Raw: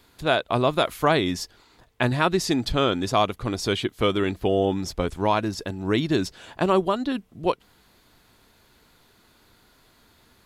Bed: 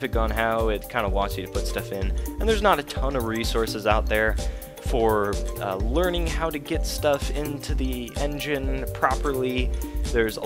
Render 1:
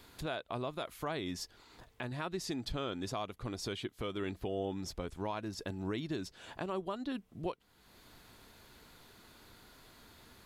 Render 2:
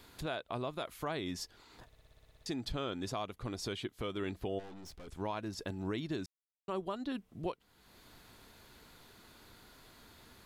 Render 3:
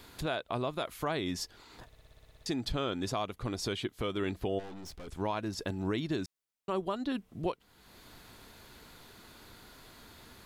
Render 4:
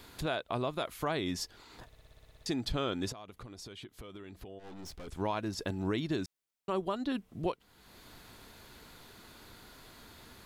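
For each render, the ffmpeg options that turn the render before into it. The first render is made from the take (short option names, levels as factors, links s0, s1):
-af "acompressor=threshold=0.00282:ratio=1.5,alimiter=level_in=1.33:limit=0.0631:level=0:latency=1:release=407,volume=0.75"
-filter_complex "[0:a]asplit=3[s0][s1][s2];[s0]afade=t=out:st=4.58:d=0.02[s3];[s1]aeval=exprs='(tanh(251*val(0)+0.6)-tanh(0.6))/251':c=same,afade=t=in:st=4.58:d=0.02,afade=t=out:st=5.07:d=0.02[s4];[s2]afade=t=in:st=5.07:d=0.02[s5];[s3][s4][s5]amix=inputs=3:normalize=0,asplit=13[s6][s7][s8][s9][s10][s11][s12][s13][s14][s15][s16][s17][s18];[s6]atrim=end=1.922[s19];[s7]atrim=start=1.858:end=1.922[s20];[s8]atrim=start=1.858:end=1.922[s21];[s9]atrim=start=1.858:end=1.922[s22];[s10]atrim=start=1.858:end=1.922[s23];[s11]atrim=start=1.858:end=1.922[s24];[s12]atrim=start=1.858:end=1.922[s25];[s13]atrim=start=1.858:end=1.922[s26];[s14]atrim=start=1.858:end=1.922[s27];[s15]atrim=start=1.858:end=1.922[s28];[s16]atrim=start=2.458:end=6.26,asetpts=PTS-STARTPTS,afade=t=out:st=3.798:d=0.004:c=hsin[s29];[s17]atrim=start=6.26:end=6.68,asetpts=PTS-STARTPTS,volume=0[s30];[s18]atrim=start=6.68,asetpts=PTS-STARTPTS,afade=t=in:d=0.004:c=hsin[s31];[s19][s20]acrossfade=d=0.004:c1=hsin:c2=hsin[s32];[s32][s21]acrossfade=d=0.004:c1=hsin:c2=hsin[s33];[s33][s22]acrossfade=d=0.004:c1=hsin:c2=hsin[s34];[s34][s23]acrossfade=d=0.004:c1=hsin:c2=hsin[s35];[s35][s24]acrossfade=d=0.004:c1=hsin:c2=hsin[s36];[s36][s25]acrossfade=d=0.004:c1=hsin:c2=hsin[s37];[s37][s26]acrossfade=d=0.004:c1=hsin:c2=hsin[s38];[s38][s27]acrossfade=d=0.004:c1=hsin:c2=hsin[s39];[s39][s28]acrossfade=d=0.004:c1=hsin:c2=hsin[s40];[s29][s30][s31]concat=n=3:v=0:a=1[s41];[s40][s41]acrossfade=d=0.004:c1=hsin:c2=hsin"
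-af "volume=1.68"
-filter_complex "[0:a]asettb=1/sr,asplit=3[s0][s1][s2];[s0]atrim=end=3.124[s3];[s1]atrim=start=3.12:end=4.79,asetpts=PTS-STARTPTS,afade=t=in:d=0.004:c=qsin,afade=t=out:st=1.666:d=0.004:c=qsin,acompressor=threshold=0.00708:ratio=12:attack=3.2:release=140:knee=1:detection=peak[s4];[s2]atrim=start=4.786[s5];[s3][s4]acrossfade=d=0.004:c1=hsin:c2=qsin[s6];[s6][s5]acrossfade=d=0.004:c1=qsin:c2=hsin"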